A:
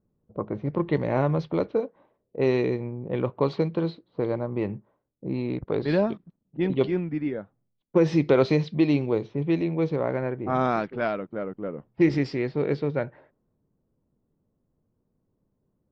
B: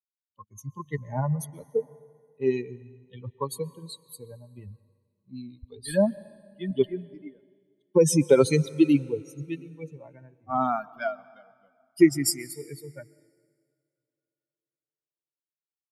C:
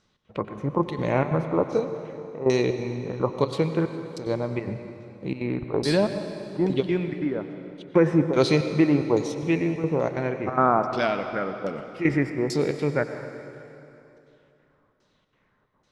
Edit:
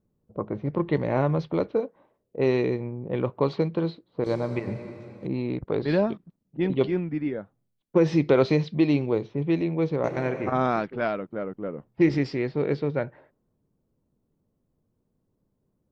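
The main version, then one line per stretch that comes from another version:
A
4.24–5.27 s: from C
10.04–10.52 s: from C
not used: B

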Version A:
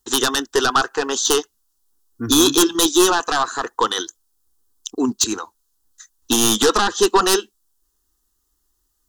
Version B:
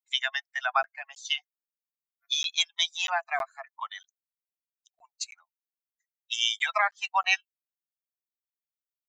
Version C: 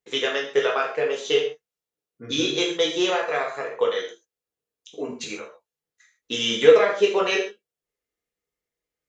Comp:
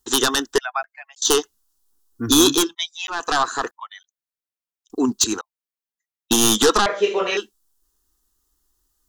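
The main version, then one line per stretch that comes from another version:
A
0.58–1.22 s: from B
2.63–3.20 s: from B, crossfade 0.24 s
3.71–4.90 s: from B
5.41–6.31 s: from B
6.86–7.37 s: from C

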